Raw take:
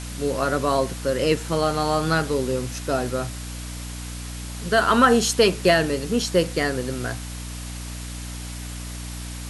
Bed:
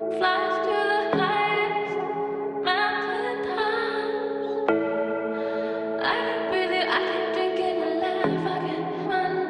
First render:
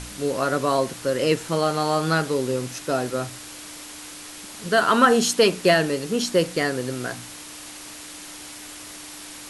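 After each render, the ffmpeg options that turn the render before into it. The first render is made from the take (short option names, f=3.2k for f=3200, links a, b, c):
-af "bandreject=f=60:t=h:w=4,bandreject=f=120:t=h:w=4,bandreject=f=180:t=h:w=4,bandreject=f=240:t=h:w=4"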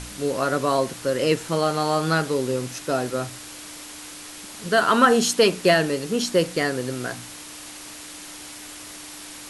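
-af anull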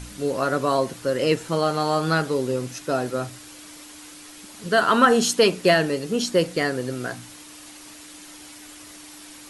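-af "afftdn=nr=6:nf=-40"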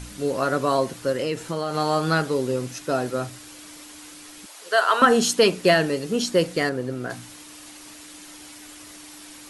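-filter_complex "[0:a]asettb=1/sr,asplit=3[a][b][c];[a]atrim=end=1.124[d];[b]atrim=start=1.12:end=1.75,asetpts=PTS-STARTPTS,afade=t=in:d=0.004:c=qsin,afade=t=out:st=0.626:d=0.004:c=qsin,acompressor=threshold=-22dB:ratio=4:attack=3.2:release=140:knee=1:detection=peak[e];[c]atrim=start=1.746[f];[d][e]acrossfade=d=0.004:c1=hsin:c2=qsin[g];[g][f]acrossfade=d=0.004:c1=qsin:c2=hsin,asettb=1/sr,asplit=3[h][i][j];[h]atrim=end=4.464[k];[i]atrim=start=4.46:end=5.02,asetpts=PTS-STARTPTS,afade=t=in:d=0.004:c=qsin,afade=t=out:st=0.556:d=0.004:c=qsin,highpass=f=480:w=0.5412,highpass=f=480:w=1.3066[l];[j]atrim=start=5.016[m];[k][l]acrossfade=d=0.004:c1=hsin:c2=qsin[n];[n][m]acrossfade=d=0.004:c1=qsin:c2=hsin,asettb=1/sr,asplit=3[o][p][q];[o]atrim=end=6.694[r];[p]atrim=start=6.69:end=7.1,asetpts=PTS-STARTPTS,afade=t=in:d=0.004:c=qsin,afade=t=out:st=0.406:d=0.004:c=qsin,highshelf=f=2.3k:g=-10[s];[q]atrim=start=7.096[t];[r][s]acrossfade=d=0.004:c1=hsin:c2=qsin[u];[u][t]acrossfade=d=0.004:c1=qsin:c2=hsin"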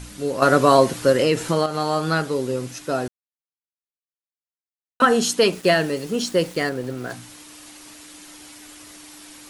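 -filter_complex "[0:a]asettb=1/sr,asplit=3[a][b][c];[a]atrim=end=5.524[d];[b]atrim=start=5.52:end=7.13,asetpts=PTS-STARTPTS,afade=t=in:d=0.004:c=qsin,afade=t=out:st=1.606:d=0.004:c=qsin,aeval=exprs='val(0)*gte(abs(val(0)),0.0119)':c=same[e];[c]atrim=start=7.126[f];[d][e]acrossfade=d=0.004:c1=hsin:c2=qsin[g];[g][f]acrossfade=d=0.004:c1=qsin:c2=hsin,asplit=5[h][i][j][k][l];[h]atrim=end=0.422[m];[i]atrim=start=0.418:end=1.662,asetpts=PTS-STARTPTS,volume=7.5dB[n];[j]atrim=start=1.658:end=3.08,asetpts=PTS-STARTPTS,afade=t=out:st=1.418:d=0.004:c=hsin[o];[k]atrim=start=3.08:end=5,asetpts=PTS-STARTPTS,volume=0[p];[l]atrim=start=5,asetpts=PTS-STARTPTS,afade=t=in:d=0.004:c=hsin[q];[m][n]acrossfade=d=0.004:c1=hsin:c2=hsin[r];[o][p][q]concat=n=3:v=0:a=1[s];[r][s]acrossfade=d=0.004:c1=hsin:c2=hsin"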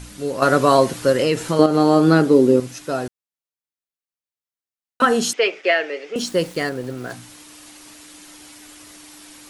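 -filter_complex "[0:a]asettb=1/sr,asplit=3[a][b][c];[a]atrim=end=1.594[d];[b]atrim=start=1.59:end=2.6,asetpts=PTS-STARTPTS,afade=t=in:d=0.004:c=qsin,afade=t=out:st=1.006:d=0.004:c=qsin,equalizer=f=300:t=o:w=1.7:g=14.5[e];[c]atrim=start=2.596[f];[d][e]acrossfade=d=0.004:c1=hsin:c2=qsin[g];[g][f]acrossfade=d=0.004:c1=qsin:c2=hsin,asettb=1/sr,asplit=3[h][i][j];[h]atrim=end=5.334[k];[i]atrim=start=5.33:end=6.16,asetpts=PTS-STARTPTS,afade=t=in:d=0.004:c=qsin,afade=t=out:st=0.826:d=0.004:c=qsin,highpass=f=410:w=0.5412,highpass=f=410:w=1.3066,equalizer=f=1k:t=q:w=4:g=-8,equalizer=f=2.2k:t=q:w=4:g=10,equalizer=f=4.2k:t=q:w=4:g=-10,lowpass=f=4.9k:w=0.5412,lowpass=f=4.9k:w=1.3066[l];[j]atrim=start=6.156[m];[k][l]acrossfade=d=0.004:c1=hsin:c2=qsin[n];[n][m]acrossfade=d=0.004:c1=qsin:c2=hsin"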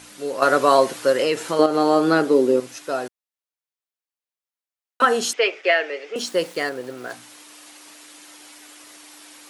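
-af "highpass=100,bass=f=250:g=-15,treble=f=4k:g=-2"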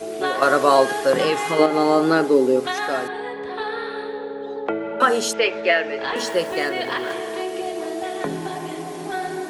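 -filter_complex "[1:a]volume=-2.5dB[a];[0:a][a]amix=inputs=2:normalize=0"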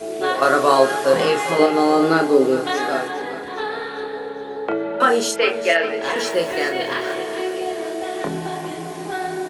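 -filter_complex "[0:a]asplit=2[a][b];[b]adelay=30,volume=-5.5dB[c];[a][c]amix=inputs=2:normalize=0,asplit=2[d][e];[e]aecho=0:1:405|810|1215|1620|2025|2430:0.224|0.123|0.0677|0.0372|0.0205|0.0113[f];[d][f]amix=inputs=2:normalize=0"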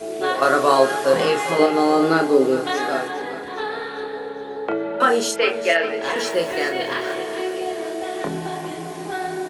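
-af "volume=-1dB"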